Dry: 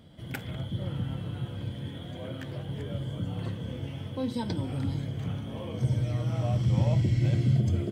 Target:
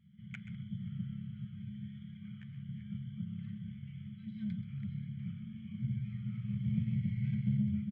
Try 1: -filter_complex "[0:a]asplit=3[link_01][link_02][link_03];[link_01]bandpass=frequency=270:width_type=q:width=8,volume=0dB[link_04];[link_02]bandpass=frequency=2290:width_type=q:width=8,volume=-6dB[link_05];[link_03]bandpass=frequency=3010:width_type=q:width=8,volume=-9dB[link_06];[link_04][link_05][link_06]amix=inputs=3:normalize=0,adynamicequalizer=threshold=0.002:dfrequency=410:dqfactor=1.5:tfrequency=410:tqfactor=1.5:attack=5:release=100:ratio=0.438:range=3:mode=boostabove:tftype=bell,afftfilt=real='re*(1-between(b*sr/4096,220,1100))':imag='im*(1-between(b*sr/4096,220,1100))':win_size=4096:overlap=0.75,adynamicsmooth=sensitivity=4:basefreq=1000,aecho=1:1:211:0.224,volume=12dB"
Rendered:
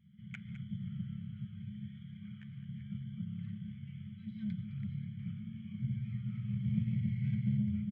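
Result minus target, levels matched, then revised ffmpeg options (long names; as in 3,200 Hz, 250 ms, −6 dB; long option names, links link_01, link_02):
echo 81 ms late
-filter_complex "[0:a]asplit=3[link_01][link_02][link_03];[link_01]bandpass=frequency=270:width_type=q:width=8,volume=0dB[link_04];[link_02]bandpass=frequency=2290:width_type=q:width=8,volume=-6dB[link_05];[link_03]bandpass=frequency=3010:width_type=q:width=8,volume=-9dB[link_06];[link_04][link_05][link_06]amix=inputs=3:normalize=0,adynamicequalizer=threshold=0.002:dfrequency=410:dqfactor=1.5:tfrequency=410:tqfactor=1.5:attack=5:release=100:ratio=0.438:range=3:mode=boostabove:tftype=bell,afftfilt=real='re*(1-between(b*sr/4096,220,1100))':imag='im*(1-between(b*sr/4096,220,1100))':win_size=4096:overlap=0.75,adynamicsmooth=sensitivity=4:basefreq=1000,aecho=1:1:130:0.224,volume=12dB"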